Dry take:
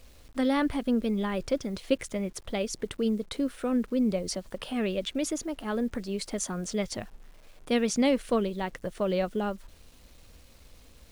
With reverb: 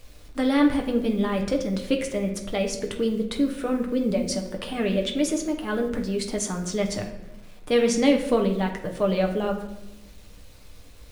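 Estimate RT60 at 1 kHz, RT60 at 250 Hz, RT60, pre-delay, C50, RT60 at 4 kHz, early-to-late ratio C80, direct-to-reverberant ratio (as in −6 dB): 0.85 s, 1.4 s, 1.0 s, 7 ms, 8.0 dB, 0.60 s, 11.0 dB, 1.5 dB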